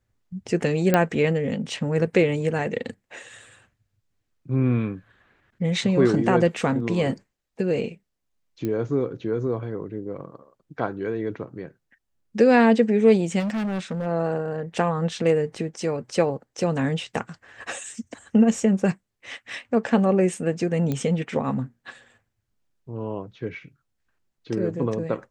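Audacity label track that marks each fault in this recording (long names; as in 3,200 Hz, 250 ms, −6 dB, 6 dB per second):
0.940000	0.940000	click −6 dBFS
8.650000	8.650000	click −16 dBFS
13.390000	14.070000	clipping −23.5 dBFS
20.920000	20.920000	click −14 dBFS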